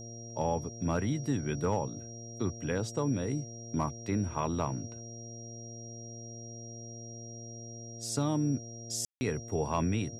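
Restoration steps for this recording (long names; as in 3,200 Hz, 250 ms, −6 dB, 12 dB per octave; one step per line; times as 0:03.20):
clipped peaks rebuilt −19.5 dBFS
hum removal 115.2 Hz, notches 6
notch filter 5,700 Hz, Q 30
ambience match 0:09.05–0:09.21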